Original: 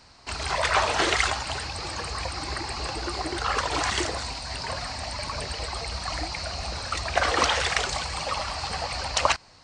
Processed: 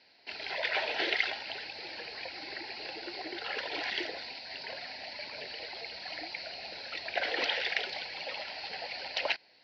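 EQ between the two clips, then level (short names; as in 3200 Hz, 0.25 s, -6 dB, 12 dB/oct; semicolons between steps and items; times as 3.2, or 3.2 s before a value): HPF 380 Hz 12 dB/oct; rippled Chebyshev low-pass 6400 Hz, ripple 3 dB; fixed phaser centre 2800 Hz, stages 4; -2.0 dB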